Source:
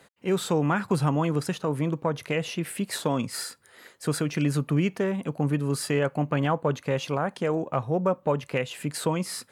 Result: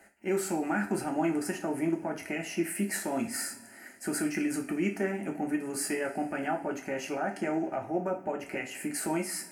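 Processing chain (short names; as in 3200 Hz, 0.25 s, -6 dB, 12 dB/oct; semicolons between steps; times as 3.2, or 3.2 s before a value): limiter -18.5 dBFS, peak gain reduction 6.5 dB; fixed phaser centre 730 Hz, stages 8; two-slope reverb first 0.34 s, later 2.7 s, from -22 dB, DRR 1 dB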